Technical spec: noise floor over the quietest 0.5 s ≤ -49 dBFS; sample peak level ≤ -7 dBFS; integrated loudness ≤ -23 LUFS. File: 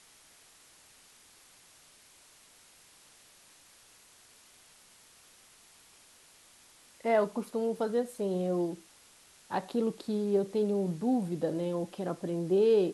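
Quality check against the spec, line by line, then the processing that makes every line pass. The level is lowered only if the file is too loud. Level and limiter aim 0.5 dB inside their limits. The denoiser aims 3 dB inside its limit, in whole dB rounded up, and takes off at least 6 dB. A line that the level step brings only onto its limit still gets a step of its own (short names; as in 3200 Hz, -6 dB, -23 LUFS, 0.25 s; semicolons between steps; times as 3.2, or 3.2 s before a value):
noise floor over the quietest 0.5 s -59 dBFS: OK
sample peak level -15.5 dBFS: OK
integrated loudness -31.0 LUFS: OK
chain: none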